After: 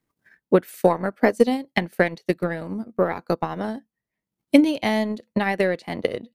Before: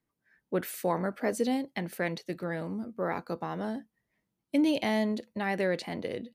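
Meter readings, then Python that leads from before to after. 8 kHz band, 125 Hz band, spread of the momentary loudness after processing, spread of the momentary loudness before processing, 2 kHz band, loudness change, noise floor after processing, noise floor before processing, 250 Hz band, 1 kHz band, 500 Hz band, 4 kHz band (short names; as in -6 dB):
n/a, +7.5 dB, 9 LU, 9 LU, +9.0 dB, +9.0 dB, under -85 dBFS, -84 dBFS, +8.0 dB, +8.5 dB, +10.0 dB, +6.5 dB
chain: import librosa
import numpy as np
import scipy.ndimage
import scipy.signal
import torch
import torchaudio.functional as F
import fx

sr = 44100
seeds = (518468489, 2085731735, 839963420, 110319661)

y = fx.transient(x, sr, attack_db=11, sustain_db=-11)
y = y * librosa.db_to_amplitude(4.5)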